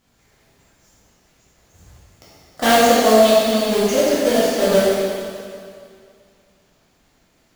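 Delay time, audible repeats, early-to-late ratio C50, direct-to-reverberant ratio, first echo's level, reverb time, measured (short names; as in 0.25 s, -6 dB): none, none, -3.5 dB, -9.5 dB, none, 2.3 s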